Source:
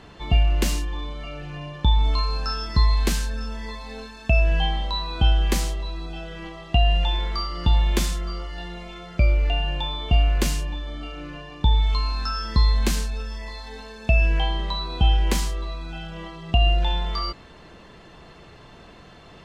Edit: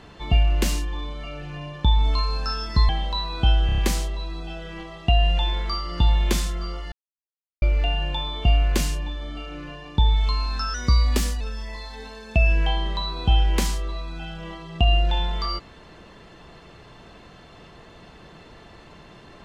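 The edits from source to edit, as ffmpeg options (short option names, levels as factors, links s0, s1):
-filter_complex "[0:a]asplit=10[s0][s1][s2][s3][s4][s5][s6][s7][s8][s9];[s0]atrim=end=2.892[s10];[s1]atrim=start=4.668:end=5.472[s11];[s2]atrim=start=5.438:end=5.472[s12];[s3]atrim=start=5.438:end=5.472[s13];[s4]atrim=start=5.438:end=5.472[s14];[s5]atrim=start=5.438:end=8.58,asetpts=PTS-STARTPTS,afade=t=out:st=3.138:d=0.004:c=hsin[s15];[s6]atrim=start=8.58:end=9.28,asetpts=PTS-STARTPTS,volume=0[s16];[s7]atrim=start=9.28:end=12.404,asetpts=PTS-STARTPTS,afade=t=in:d=0.004:c=hsin[s17];[s8]atrim=start=12.4:end=13.14,asetpts=PTS-STARTPTS,asetrate=48951,aresample=44100[s18];[s9]atrim=start=13.136[s19];[s10][s11]acrossfade=d=0.004:c1=hsin:c2=hsin[s20];[s20][s12]acrossfade=d=0.004:c1=hsin:c2=hsin[s21];[s21][s13]acrossfade=d=0.004:c1=hsin:c2=hsin[s22];[s22][s14]acrossfade=d=0.004:c1=hsin:c2=hsin[s23];[s15][s16][s17]concat=n=3:v=0:a=1[s24];[s23][s24]acrossfade=d=0.004:c1=hsin:c2=hsin[s25];[s25][s18]acrossfade=d=0.004:c1=hsin:c2=hsin[s26];[s26][s19]acrossfade=d=0.004:c1=hsin:c2=hsin"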